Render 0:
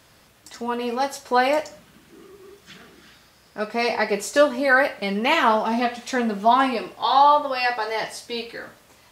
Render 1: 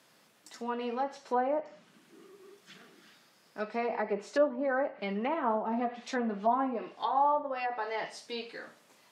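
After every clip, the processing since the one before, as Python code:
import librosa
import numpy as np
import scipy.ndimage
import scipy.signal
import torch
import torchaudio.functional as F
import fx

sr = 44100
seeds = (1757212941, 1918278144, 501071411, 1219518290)

y = fx.env_lowpass_down(x, sr, base_hz=890.0, full_db=-17.0)
y = scipy.signal.sosfilt(scipy.signal.butter(4, 160.0, 'highpass', fs=sr, output='sos'), y)
y = y * librosa.db_to_amplitude(-8.5)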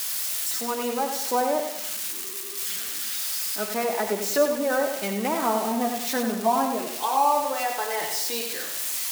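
y = x + 0.5 * 10.0 ** (-27.0 / 20.0) * np.diff(np.sign(x), prepend=np.sign(x[:1]))
y = fx.echo_feedback(y, sr, ms=95, feedback_pct=45, wet_db=-7.0)
y = y * librosa.db_to_amplitude(5.0)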